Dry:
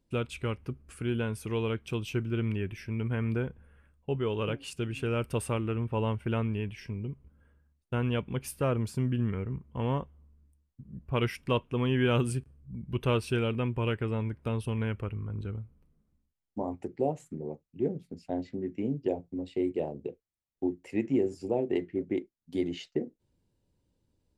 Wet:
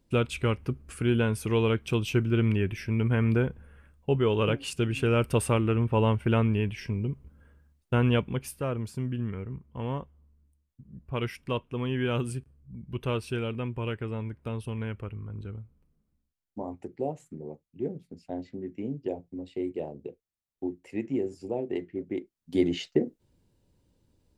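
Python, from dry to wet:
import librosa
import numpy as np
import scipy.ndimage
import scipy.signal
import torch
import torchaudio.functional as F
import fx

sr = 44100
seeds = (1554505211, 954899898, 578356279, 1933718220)

y = fx.gain(x, sr, db=fx.line((8.15, 6.0), (8.61, -2.5), (22.11, -2.5), (22.62, 6.5)))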